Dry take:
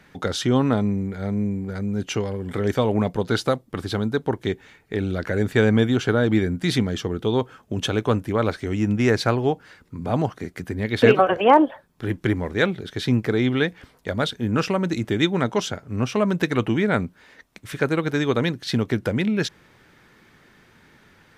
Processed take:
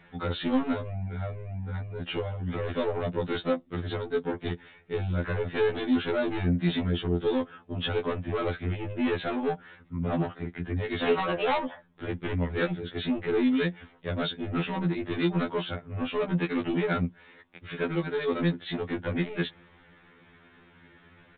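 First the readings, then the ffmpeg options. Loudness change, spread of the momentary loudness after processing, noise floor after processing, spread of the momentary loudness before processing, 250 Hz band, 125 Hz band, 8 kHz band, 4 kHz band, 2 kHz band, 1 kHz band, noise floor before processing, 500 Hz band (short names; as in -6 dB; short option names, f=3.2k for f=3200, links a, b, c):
-7.5 dB, 9 LU, -58 dBFS, 10 LU, -7.0 dB, -7.0 dB, under -40 dB, -7.0 dB, -7.5 dB, -9.0 dB, -56 dBFS, -7.0 dB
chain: -af "aresample=8000,asoftclip=type=tanh:threshold=-20dB,aresample=44100,afftfilt=real='re*2*eq(mod(b,4),0)':imag='im*2*eq(mod(b,4),0)':win_size=2048:overlap=0.75"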